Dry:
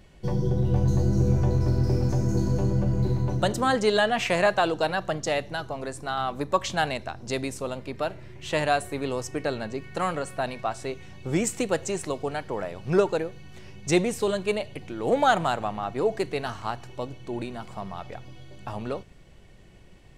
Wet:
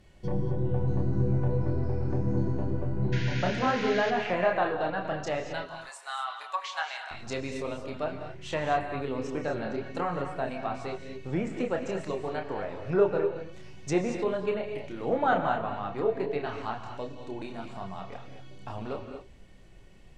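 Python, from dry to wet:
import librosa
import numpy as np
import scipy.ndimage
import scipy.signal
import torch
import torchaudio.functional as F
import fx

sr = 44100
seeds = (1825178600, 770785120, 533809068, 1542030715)

y = fx.highpass(x, sr, hz=880.0, slope=24, at=(5.62, 7.11))
y = fx.chorus_voices(y, sr, voices=4, hz=0.38, base_ms=29, depth_ms=2.8, mix_pct=40)
y = fx.spec_paint(y, sr, seeds[0], shape='noise', start_s=3.12, length_s=0.99, low_hz=1400.0, high_hz=7000.0, level_db=-30.0)
y = fx.env_lowpass_down(y, sr, base_hz=2000.0, full_db=-25.5)
y = fx.rev_gated(y, sr, seeds[1], gate_ms=260, shape='rising', drr_db=6.0)
y = F.gain(torch.from_numpy(y), -1.0).numpy()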